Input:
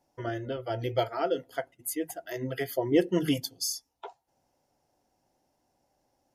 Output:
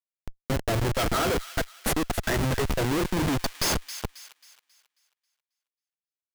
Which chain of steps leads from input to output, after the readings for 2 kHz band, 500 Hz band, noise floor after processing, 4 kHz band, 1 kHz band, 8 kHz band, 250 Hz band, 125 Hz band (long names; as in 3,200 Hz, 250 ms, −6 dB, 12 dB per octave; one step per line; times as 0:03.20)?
+9.0 dB, 0.0 dB, below −85 dBFS, +6.5 dB, +6.0 dB, +5.5 dB, +1.5 dB, +8.5 dB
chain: gain on a spectral selection 0:00.87–0:02.57, 1,200–4,100 Hz +11 dB
automatic gain control gain up to 9 dB
comparator with hysteresis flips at −23 dBFS
on a send: delay with a high-pass on its return 270 ms, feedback 39%, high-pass 1,900 Hz, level −11 dB